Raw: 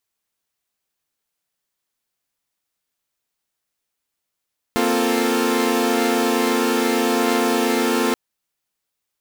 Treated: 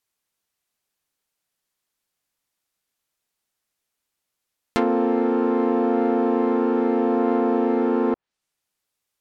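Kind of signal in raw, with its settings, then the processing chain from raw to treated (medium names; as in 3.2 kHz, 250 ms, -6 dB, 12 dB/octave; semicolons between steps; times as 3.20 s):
chord A#3/C4/F4/A4 saw, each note -20 dBFS 3.38 s
low-pass that closes with the level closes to 830 Hz, closed at -15.5 dBFS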